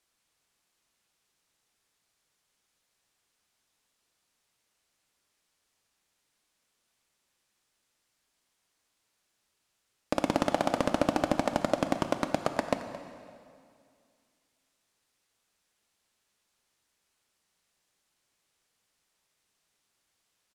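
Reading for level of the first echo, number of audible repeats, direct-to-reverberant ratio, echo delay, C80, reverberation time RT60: -17.0 dB, 1, 7.5 dB, 0.221 s, 9.5 dB, 2.2 s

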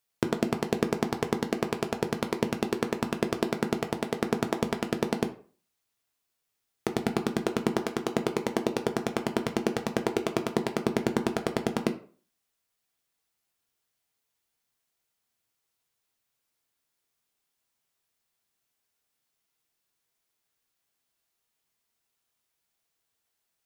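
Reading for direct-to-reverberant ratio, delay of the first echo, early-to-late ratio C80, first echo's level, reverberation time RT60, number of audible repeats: 5.5 dB, none, 18.0 dB, none, 0.40 s, none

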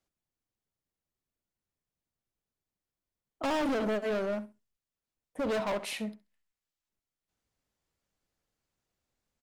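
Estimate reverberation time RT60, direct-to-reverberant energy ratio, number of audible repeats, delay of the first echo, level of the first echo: none, none, 2, 66 ms, -17.0 dB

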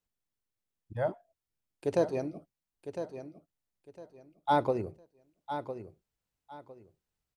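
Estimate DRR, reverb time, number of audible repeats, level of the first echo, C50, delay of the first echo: none, none, 3, -10.0 dB, none, 1.006 s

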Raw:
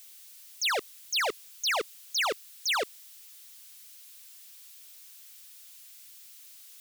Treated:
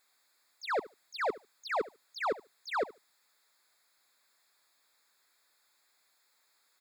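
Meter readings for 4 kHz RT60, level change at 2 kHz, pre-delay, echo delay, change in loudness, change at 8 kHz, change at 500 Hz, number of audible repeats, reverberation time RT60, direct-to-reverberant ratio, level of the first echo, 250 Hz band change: none, -7.5 dB, none, 73 ms, -6.5 dB, -23.0 dB, +0.5 dB, 2, none, none, -18.5 dB, +2.5 dB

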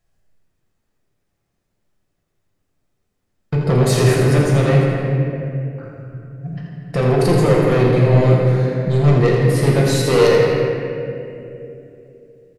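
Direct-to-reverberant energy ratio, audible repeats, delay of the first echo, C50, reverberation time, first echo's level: -4.0 dB, 1, 82 ms, -1.5 dB, 2.9 s, -7.5 dB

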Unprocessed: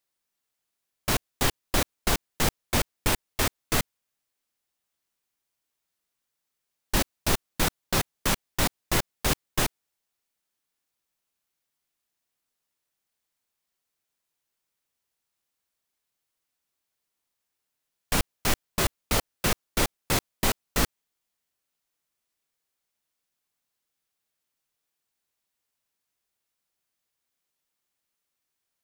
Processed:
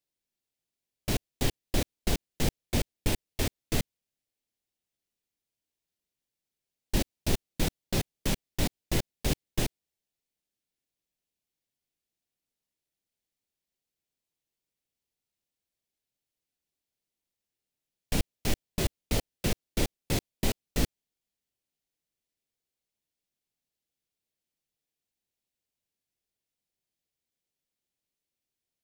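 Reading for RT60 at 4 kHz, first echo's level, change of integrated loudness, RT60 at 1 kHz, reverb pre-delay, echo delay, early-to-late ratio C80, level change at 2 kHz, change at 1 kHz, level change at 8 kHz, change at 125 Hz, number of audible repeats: none, none, -5.0 dB, none, none, none, none, -8.5 dB, -10.5 dB, -7.0 dB, 0.0 dB, none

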